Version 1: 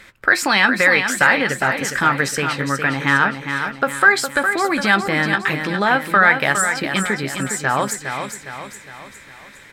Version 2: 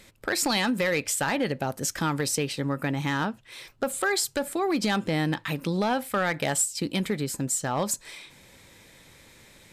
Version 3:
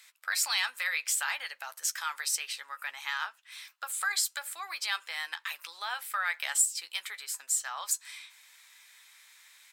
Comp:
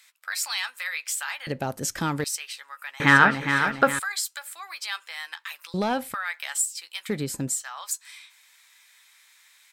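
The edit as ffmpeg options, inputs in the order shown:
-filter_complex "[1:a]asplit=3[a][b][c];[2:a]asplit=5[d][e][f][g][h];[d]atrim=end=1.472[i];[a]atrim=start=1.468:end=2.242[j];[e]atrim=start=2.238:end=3.002[k];[0:a]atrim=start=2.998:end=3.992[l];[f]atrim=start=3.988:end=5.742[m];[b]atrim=start=5.738:end=6.142[n];[g]atrim=start=6.138:end=7.092[o];[c]atrim=start=7.088:end=7.542[p];[h]atrim=start=7.538[q];[i][j]acrossfade=d=0.004:c1=hsin:c2=hsin[r];[r][k]acrossfade=d=0.004:c1=hsin:c2=hsin[s];[s][l]acrossfade=d=0.004:c1=hsin:c2=hsin[t];[t][m]acrossfade=d=0.004:c1=hsin:c2=hsin[u];[u][n]acrossfade=d=0.004:c1=hsin:c2=hsin[v];[v][o]acrossfade=d=0.004:c1=hsin:c2=hsin[w];[w][p]acrossfade=d=0.004:c1=hsin:c2=hsin[x];[x][q]acrossfade=d=0.004:c1=hsin:c2=hsin"

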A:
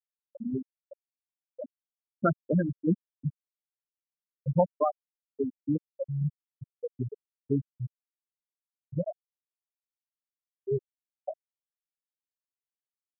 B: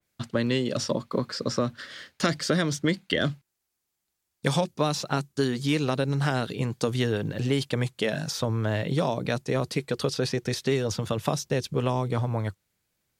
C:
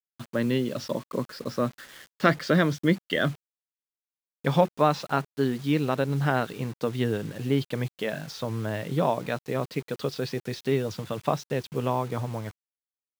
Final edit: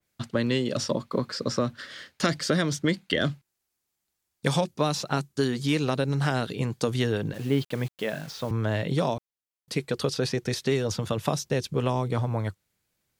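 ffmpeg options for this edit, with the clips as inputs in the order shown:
-filter_complex "[1:a]asplit=3[a][b][c];[a]atrim=end=7.342[d];[2:a]atrim=start=7.338:end=8.512[e];[b]atrim=start=8.508:end=9.182[f];[0:a]atrim=start=9.178:end=9.682[g];[c]atrim=start=9.678[h];[d][e]acrossfade=d=0.004:c1=hsin:c2=hsin[i];[i][f]acrossfade=d=0.004:c1=hsin:c2=hsin[j];[j][g]acrossfade=d=0.004:c1=hsin:c2=hsin[k];[k][h]acrossfade=d=0.004:c1=hsin:c2=hsin"

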